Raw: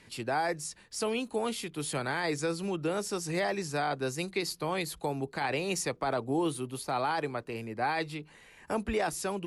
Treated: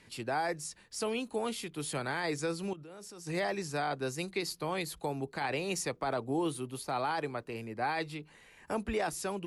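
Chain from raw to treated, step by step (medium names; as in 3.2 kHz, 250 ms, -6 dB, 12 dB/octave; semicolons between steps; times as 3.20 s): 2.73–3.27 s: level held to a coarse grid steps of 23 dB; trim -2.5 dB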